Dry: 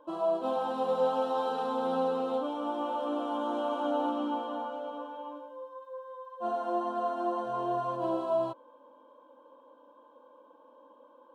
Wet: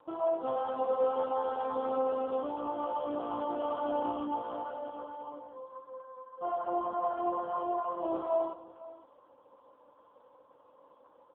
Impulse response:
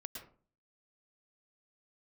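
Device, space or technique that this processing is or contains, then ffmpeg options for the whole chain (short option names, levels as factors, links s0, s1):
satellite phone: -af "highpass=300,lowpass=3300,aecho=1:1:512:0.133" -ar 8000 -c:a libopencore_amrnb -b:a 5150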